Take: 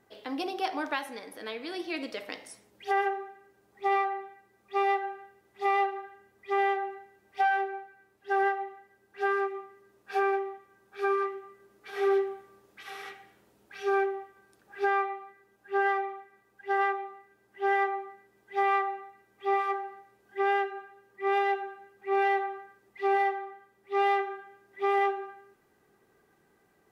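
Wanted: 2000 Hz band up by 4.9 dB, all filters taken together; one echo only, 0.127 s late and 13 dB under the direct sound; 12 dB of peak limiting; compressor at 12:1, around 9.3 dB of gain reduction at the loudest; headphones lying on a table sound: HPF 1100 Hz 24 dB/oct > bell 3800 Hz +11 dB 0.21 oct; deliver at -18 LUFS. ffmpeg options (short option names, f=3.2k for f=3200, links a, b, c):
-af "equalizer=f=2k:t=o:g=6,acompressor=threshold=-29dB:ratio=12,alimiter=level_in=4.5dB:limit=-24dB:level=0:latency=1,volume=-4.5dB,highpass=f=1.1k:w=0.5412,highpass=f=1.1k:w=1.3066,equalizer=f=3.8k:t=o:w=0.21:g=11,aecho=1:1:127:0.224,volume=25dB"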